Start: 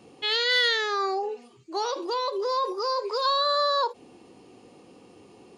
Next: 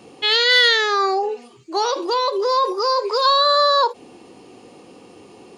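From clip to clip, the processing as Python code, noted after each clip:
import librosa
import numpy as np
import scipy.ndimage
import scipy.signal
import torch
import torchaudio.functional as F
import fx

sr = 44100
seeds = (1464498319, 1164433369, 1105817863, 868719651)

y = fx.low_shelf(x, sr, hz=220.0, db=-4.5)
y = y * librosa.db_to_amplitude(8.5)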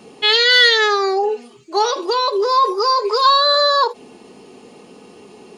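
y = x + 0.5 * np.pad(x, (int(4.7 * sr / 1000.0), 0))[:len(x)]
y = y * librosa.db_to_amplitude(1.5)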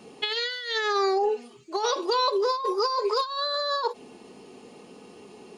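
y = fx.over_compress(x, sr, threshold_db=-17.0, ratio=-0.5)
y = y * librosa.db_to_amplitude(-8.0)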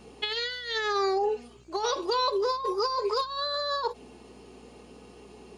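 y = fx.dmg_buzz(x, sr, base_hz=60.0, harmonics=28, level_db=-56.0, tilt_db=-6, odd_only=False)
y = y * librosa.db_to_amplitude(-2.5)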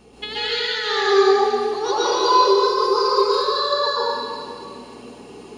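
y = fx.rev_plate(x, sr, seeds[0], rt60_s=2.2, hf_ratio=0.95, predelay_ms=115, drr_db=-9.0)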